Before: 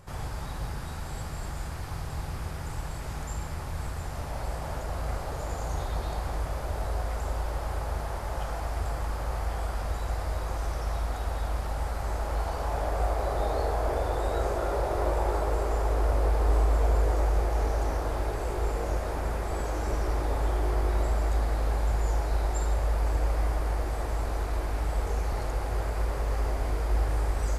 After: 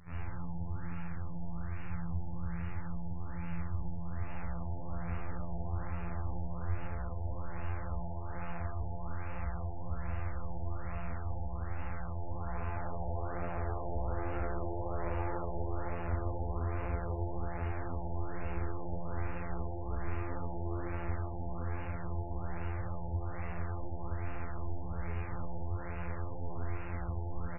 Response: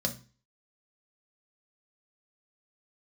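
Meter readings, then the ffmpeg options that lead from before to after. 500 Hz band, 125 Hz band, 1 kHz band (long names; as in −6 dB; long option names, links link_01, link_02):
−10.5 dB, −6.0 dB, −9.5 dB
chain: -af "equalizer=frequency=580:width_type=o:width=2.7:gain=-14.5,afftfilt=real='hypot(re,im)*cos(PI*b)':imag='0':win_size=2048:overlap=0.75,flanger=delay=16:depth=4.8:speed=2,acontrast=62,aecho=1:1:64|128|192|256|320|384:0.631|0.278|0.122|0.0537|0.0236|0.0104,afftfilt=real='re*lt(b*sr/1024,940*pow(2900/940,0.5+0.5*sin(2*PI*1.2*pts/sr)))':imag='im*lt(b*sr/1024,940*pow(2900/940,0.5+0.5*sin(2*PI*1.2*pts/sr)))':win_size=1024:overlap=0.75,volume=1dB"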